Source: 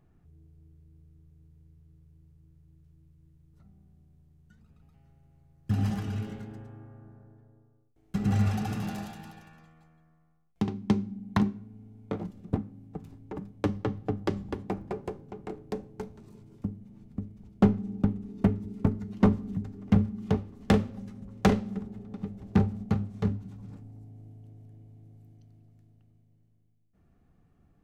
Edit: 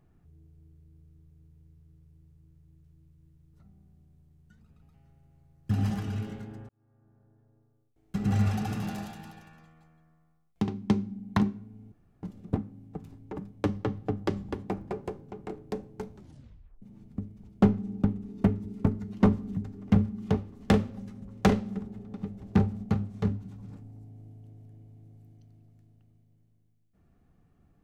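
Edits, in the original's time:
0:06.69–0:08.40: fade in
0:11.92–0:12.23: fill with room tone
0:16.15: tape stop 0.67 s

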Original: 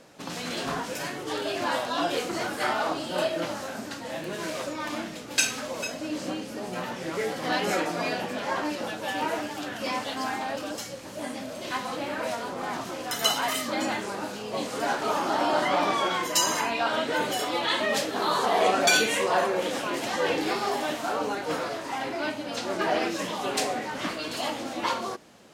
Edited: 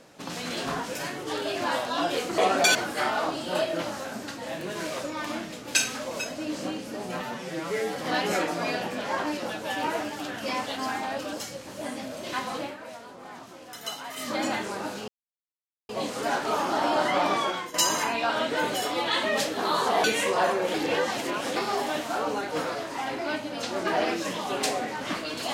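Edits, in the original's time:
0:06.84–0:07.34: time-stretch 1.5×
0:11.99–0:13.68: duck −11 dB, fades 0.15 s
0:14.46: splice in silence 0.81 s
0:15.96–0:16.31: fade out, to −13.5 dB
0:18.61–0:18.98: move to 0:02.38
0:19.68–0:20.50: reverse

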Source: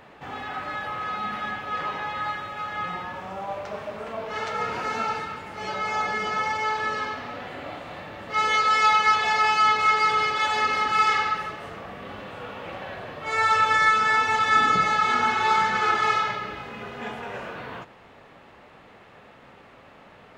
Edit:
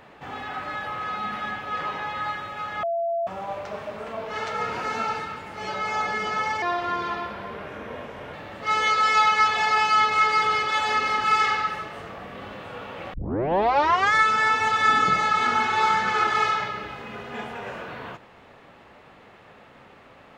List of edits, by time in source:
0:02.83–0:03.27: beep over 677 Hz −22.5 dBFS
0:06.62–0:08.01: play speed 81%
0:12.81: tape start 1.00 s

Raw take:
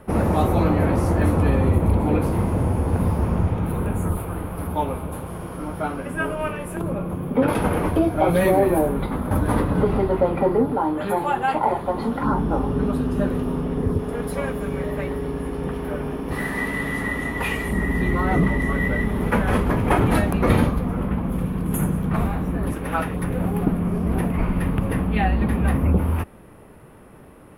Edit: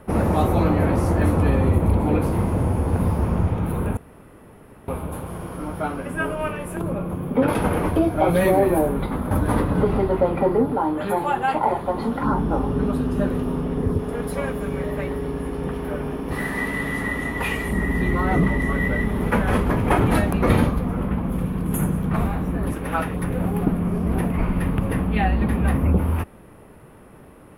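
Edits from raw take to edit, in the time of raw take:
0:03.97–0:04.88: fill with room tone

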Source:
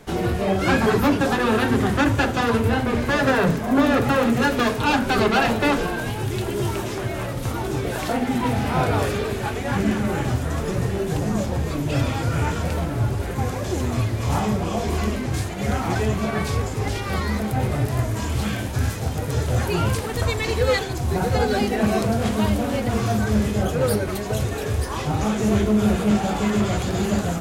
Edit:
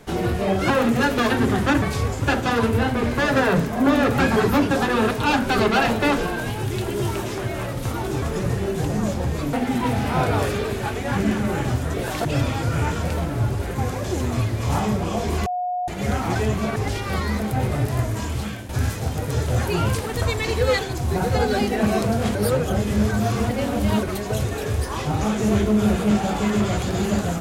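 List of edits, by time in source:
0:00.70–0:01.61: swap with 0:04.11–0:04.71
0:07.82–0:08.13: swap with 0:10.54–0:11.85
0:15.06–0:15.48: beep over 722 Hz −22 dBFS
0:16.36–0:16.76: move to 0:02.13
0:17.96–0:18.69: fade out equal-power, to −11 dB
0:22.35–0:24.03: reverse

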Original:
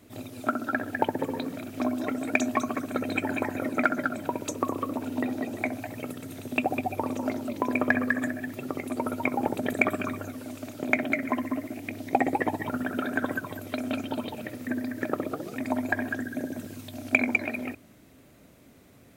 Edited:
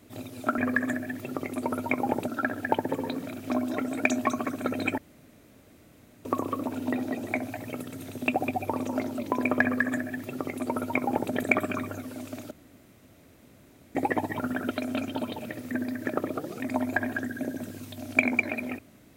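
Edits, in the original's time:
0:03.28–0:04.55: fill with room tone
0:07.92–0:09.62: duplicate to 0:00.58
0:10.81–0:12.25: fill with room tone
0:13.01–0:13.67: remove

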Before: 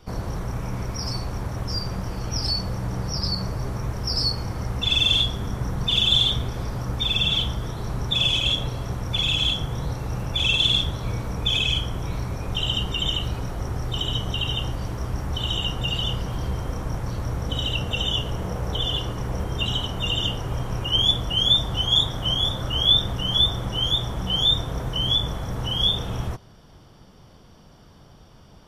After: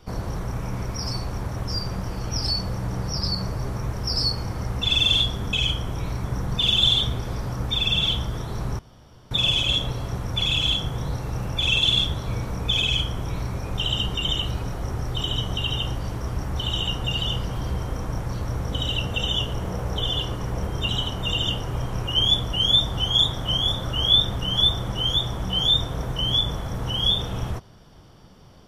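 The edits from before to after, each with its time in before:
0:08.08: splice in room tone 0.52 s
0:11.60–0:12.31: duplicate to 0:05.53

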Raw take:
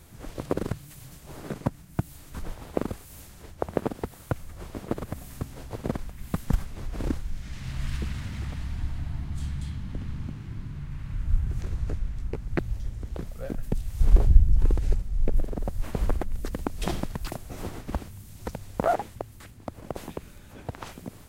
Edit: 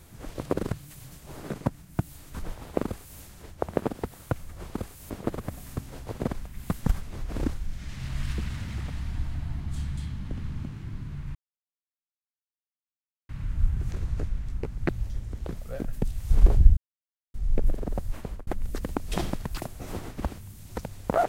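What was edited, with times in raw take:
0:02.84–0:03.20: duplicate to 0:04.74
0:10.99: splice in silence 1.94 s
0:14.47–0:15.04: silence
0:15.71–0:16.17: fade out

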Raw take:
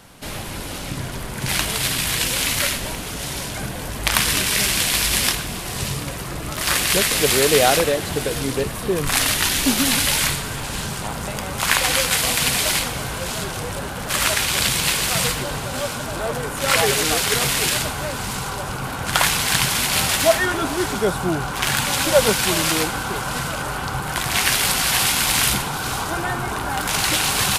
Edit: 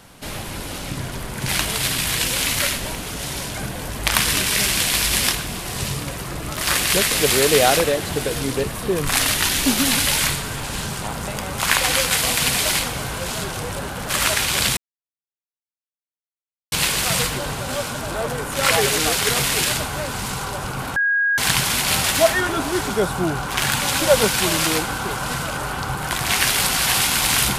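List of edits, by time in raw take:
0:14.77: splice in silence 1.95 s
0:19.01–0:19.43: beep over 1,640 Hz −15.5 dBFS

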